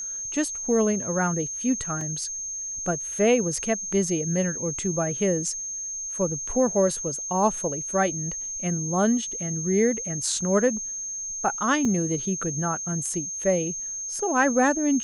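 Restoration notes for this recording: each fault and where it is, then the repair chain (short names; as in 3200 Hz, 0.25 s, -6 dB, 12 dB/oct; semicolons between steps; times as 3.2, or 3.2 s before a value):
tone 6400 Hz -30 dBFS
2.01 gap 2.8 ms
11.85 gap 3.2 ms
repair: notch 6400 Hz, Q 30; interpolate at 2.01, 2.8 ms; interpolate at 11.85, 3.2 ms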